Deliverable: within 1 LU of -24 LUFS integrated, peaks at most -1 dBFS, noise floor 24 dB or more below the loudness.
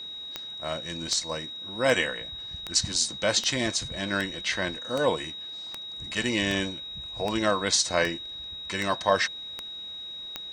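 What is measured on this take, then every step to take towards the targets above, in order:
clicks found 14; steady tone 3.8 kHz; tone level -36 dBFS; loudness -28.0 LUFS; peak level -7.5 dBFS; loudness target -24.0 LUFS
-> de-click; band-stop 3.8 kHz, Q 30; trim +4 dB

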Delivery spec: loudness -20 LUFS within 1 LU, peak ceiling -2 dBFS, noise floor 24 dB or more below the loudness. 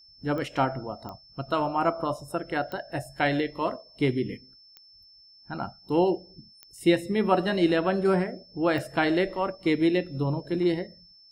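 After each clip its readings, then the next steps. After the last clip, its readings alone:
clicks found 6; steady tone 5.3 kHz; tone level -52 dBFS; loudness -27.0 LUFS; peak level -9.5 dBFS; loudness target -20.0 LUFS
-> de-click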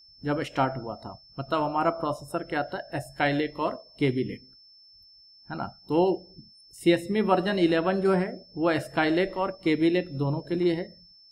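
clicks found 0; steady tone 5.3 kHz; tone level -52 dBFS
-> band-stop 5.3 kHz, Q 30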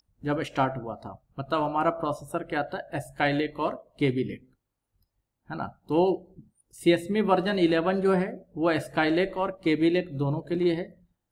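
steady tone not found; loudness -27.0 LUFS; peak level -9.5 dBFS; loudness target -20.0 LUFS
-> trim +7 dB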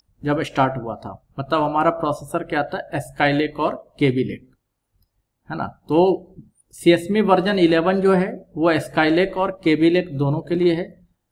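loudness -20.0 LUFS; peak level -2.5 dBFS; noise floor -75 dBFS

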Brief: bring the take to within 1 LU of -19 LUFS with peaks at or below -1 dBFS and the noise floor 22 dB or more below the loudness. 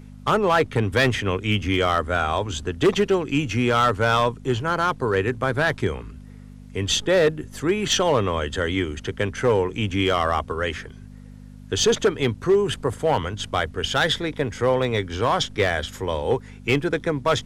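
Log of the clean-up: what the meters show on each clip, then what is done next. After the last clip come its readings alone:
clipped samples 1.0%; clipping level -12.0 dBFS; hum 50 Hz; highest harmonic 250 Hz; hum level -40 dBFS; loudness -22.5 LUFS; peak level -12.0 dBFS; loudness target -19.0 LUFS
-> clip repair -12 dBFS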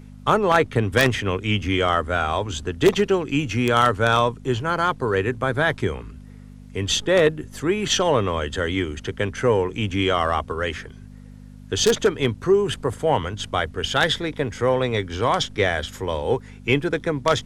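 clipped samples 0.0%; hum 50 Hz; highest harmonic 250 Hz; hum level -40 dBFS
-> de-hum 50 Hz, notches 5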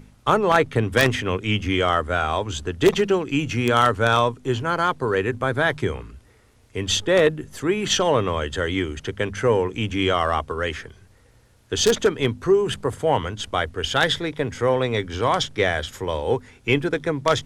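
hum not found; loudness -22.0 LUFS; peak level -3.0 dBFS; loudness target -19.0 LUFS
-> trim +3 dB; peak limiter -1 dBFS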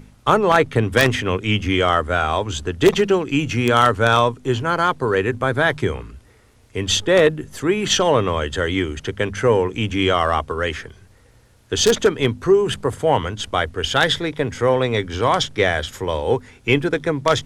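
loudness -19.0 LUFS; peak level -1.0 dBFS; noise floor -52 dBFS

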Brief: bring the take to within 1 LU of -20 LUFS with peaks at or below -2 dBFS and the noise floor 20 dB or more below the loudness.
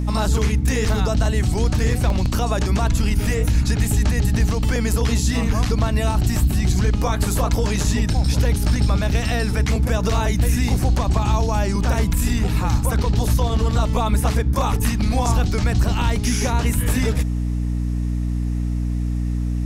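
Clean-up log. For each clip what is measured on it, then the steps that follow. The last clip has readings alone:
dropouts 2; longest dropout 1.8 ms; hum 60 Hz; highest harmonic 300 Hz; hum level -19 dBFS; loudness -20.5 LUFS; peak level -8.0 dBFS; loudness target -20.0 LUFS
-> interpolate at 2.10/9.71 s, 1.8 ms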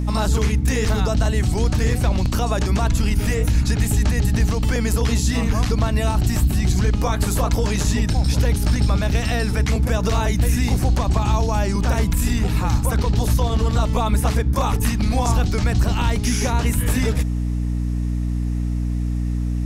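dropouts 0; hum 60 Hz; highest harmonic 300 Hz; hum level -19 dBFS
-> de-hum 60 Hz, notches 5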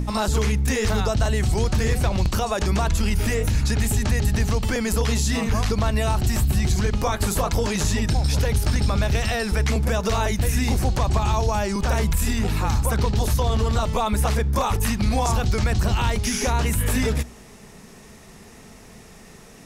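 hum not found; loudness -22.5 LUFS; peak level -10.5 dBFS; loudness target -20.0 LUFS
-> trim +2.5 dB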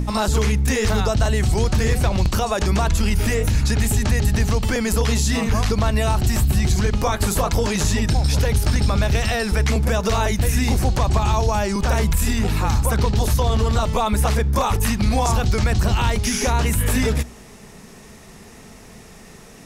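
loudness -20.0 LUFS; peak level -8.0 dBFS; noise floor -43 dBFS

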